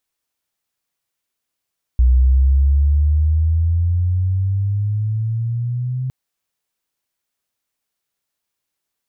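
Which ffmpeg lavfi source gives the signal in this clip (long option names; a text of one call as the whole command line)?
ffmpeg -f lavfi -i "aevalsrc='pow(10,(-8.5-11*t/4.11)/20)*sin(2*PI*61.3*4.11/(13*log(2)/12)*(exp(13*log(2)/12*t/4.11)-1))':duration=4.11:sample_rate=44100" out.wav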